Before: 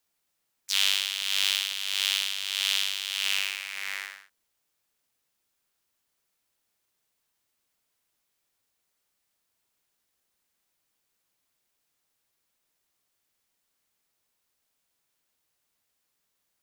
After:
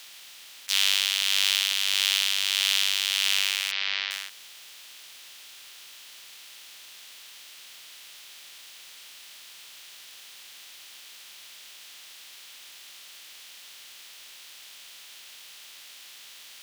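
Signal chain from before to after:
compressor on every frequency bin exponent 0.4
0:03.71–0:04.11: Butterworth low-pass 5,000 Hz 36 dB per octave

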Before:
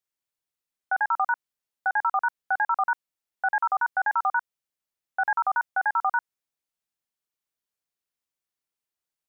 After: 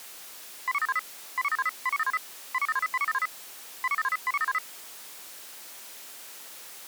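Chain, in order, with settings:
converter with a step at zero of −30.5 dBFS
Bessel high-pass filter 250 Hz, order 2
wrong playback speed 33 rpm record played at 45 rpm
level −4.5 dB

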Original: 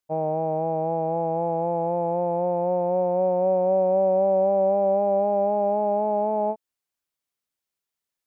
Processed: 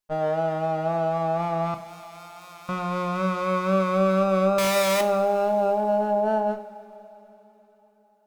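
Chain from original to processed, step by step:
lower of the sound and its delayed copy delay 4.8 ms
0:01.74–0:02.69: first difference
0:04.58–0:05.01: comparator with hysteresis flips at −40 dBFS
tape wow and flutter 21 cents
coupled-rooms reverb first 0.44 s, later 4.1 s, from −18 dB, DRR 7.5 dB

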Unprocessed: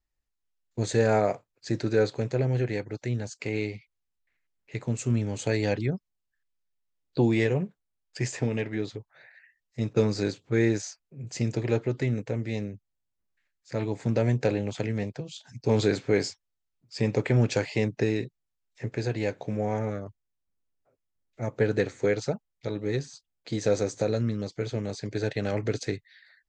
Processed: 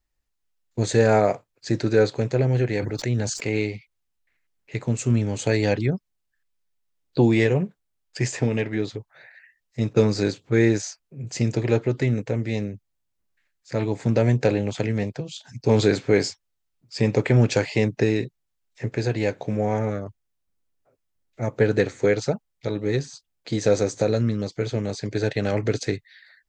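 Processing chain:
0:02.75–0:03.62: level that may fall only so fast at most 44 dB per second
level +5 dB

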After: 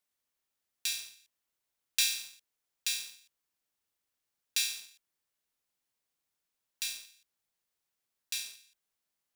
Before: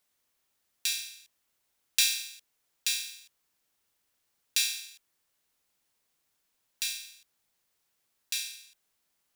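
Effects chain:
leveller curve on the samples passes 1
level −7 dB

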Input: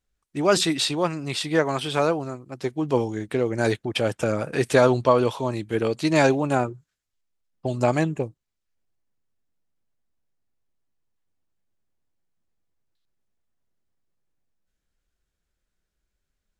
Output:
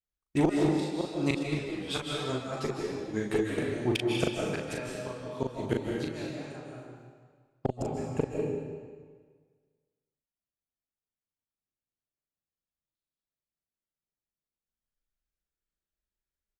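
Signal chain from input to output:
noise gate with hold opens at −37 dBFS
dynamic equaliser 840 Hz, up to −5 dB, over −32 dBFS, Q 1.3
gate with flip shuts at −16 dBFS, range −28 dB
double-tracking delay 39 ms −4 dB
comb and all-pass reverb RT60 1.6 s, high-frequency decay 0.9×, pre-delay 115 ms, DRR −1 dB
asymmetric clip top −24 dBFS
0:01.43–0:03.58: string-ensemble chorus
level +2.5 dB

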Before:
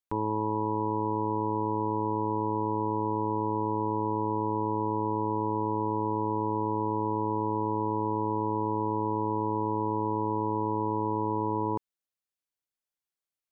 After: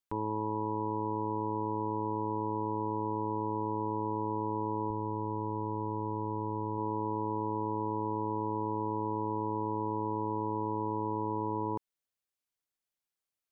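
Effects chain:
0:04.90–0:06.78: low-shelf EQ 80 Hz +11.5 dB
brickwall limiter −25 dBFS, peak gain reduction 7 dB

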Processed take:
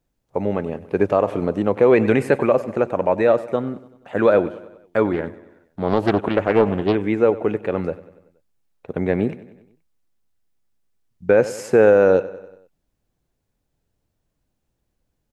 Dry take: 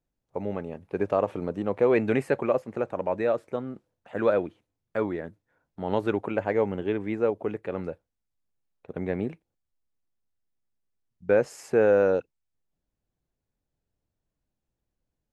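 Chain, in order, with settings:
repeating echo 95 ms, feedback 56%, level −18 dB
boost into a limiter +13 dB
0:05.13–0:06.95: highs frequency-modulated by the lows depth 0.48 ms
level −4 dB

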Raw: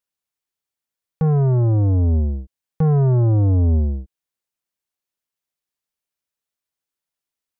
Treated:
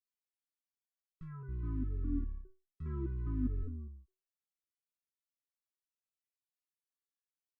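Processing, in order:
0:01.48–0:03.63: sub-octave generator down 1 octave, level +3 dB
linear-phase brick-wall band-stop 410–1,000 Hz
step-sequenced resonator 4.9 Hz 250–650 Hz
level −1 dB

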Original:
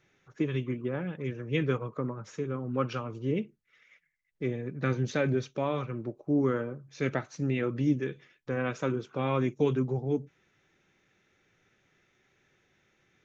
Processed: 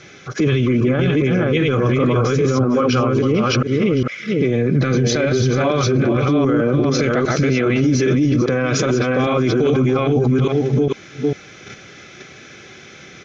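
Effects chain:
delay that plays each chunk backwards 403 ms, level −1.5 dB
in parallel at −0.5 dB: output level in coarse steps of 22 dB
on the sum: low-pass with resonance 5,400 Hz, resonance Q 2.3
notch comb filter 920 Hz
on a send: single-tap delay 449 ms −15 dB
on the sum: boost into a limiter +34 dB
level −8 dB

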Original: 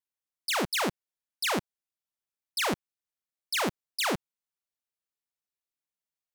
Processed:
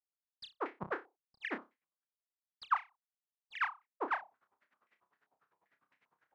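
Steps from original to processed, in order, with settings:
one-sided soft clipper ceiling −24.5 dBFS
high-pass filter 140 Hz 12 dB per octave
noise gate with hold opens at −26 dBFS
reversed playback
upward compression, threshold −40 dBFS
reversed playback
brickwall limiter −29.5 dBFS, peak gain reduction 11 dB
granular cloud 61 ms, grains 10 per second, spray 88 ms
on a send: flutter between parallel walls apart 5.2 metres, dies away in 0.23 s
on the sum: low-pass on a step sequencer 7.6 Hz 790–2,100 Hz
level +3.5 dB

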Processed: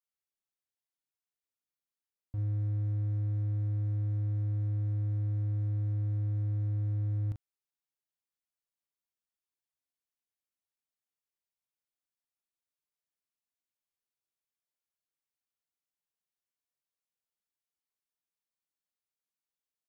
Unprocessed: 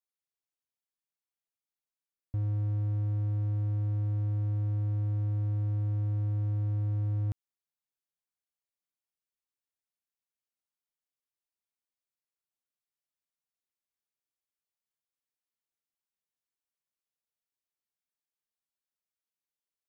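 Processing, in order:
double-tracking delay 39 ms −7 dB
level −4.5 dB

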